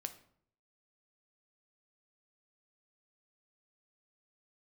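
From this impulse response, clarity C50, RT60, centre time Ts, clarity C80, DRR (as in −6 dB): 13.5 dB, 0.60 s, 8 ms, 17.0 dB, 8.0 dB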